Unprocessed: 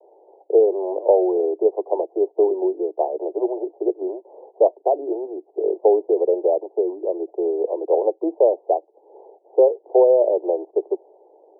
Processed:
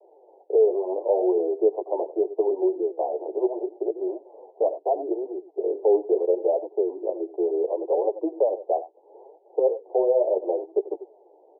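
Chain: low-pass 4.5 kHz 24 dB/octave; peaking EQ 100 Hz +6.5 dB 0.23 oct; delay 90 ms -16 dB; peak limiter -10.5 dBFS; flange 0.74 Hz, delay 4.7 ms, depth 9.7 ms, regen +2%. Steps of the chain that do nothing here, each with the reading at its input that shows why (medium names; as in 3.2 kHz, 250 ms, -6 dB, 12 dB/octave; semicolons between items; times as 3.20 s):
low-pass 4.5 kHz: input has nothing above 910 Hz; peaking EQ 100 Hz: input has nothing below 270 Hz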